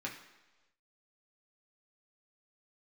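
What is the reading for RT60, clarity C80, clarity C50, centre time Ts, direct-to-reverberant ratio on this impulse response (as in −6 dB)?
non-exponential decay, 10.5 dB, 7.5 dB, 27 ms, −3.0 dB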